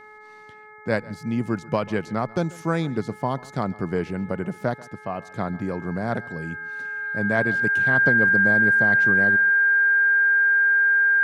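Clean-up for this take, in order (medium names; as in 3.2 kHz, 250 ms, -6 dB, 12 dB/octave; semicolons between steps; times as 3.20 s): de-hum 426.2 Hz, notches 5; band-stop 1.6 kHz, Q 30; inverse comb 139 ms -21.5 dB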